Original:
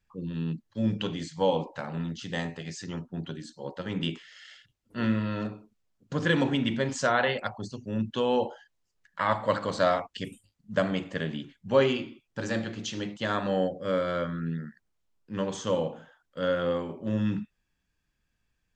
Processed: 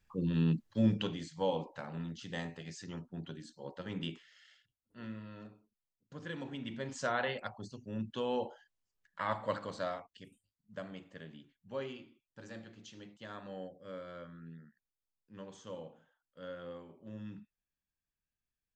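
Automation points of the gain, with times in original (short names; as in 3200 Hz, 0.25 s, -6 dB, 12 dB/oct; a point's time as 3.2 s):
0.68 s +2 dB
1.24 s -8 dB
3.94 s -8 dB
4.99 s -18 dB
6.41 s -18 dB
7.07 s -9 dB
9.49 s -9 dB
10.2 s -18 dB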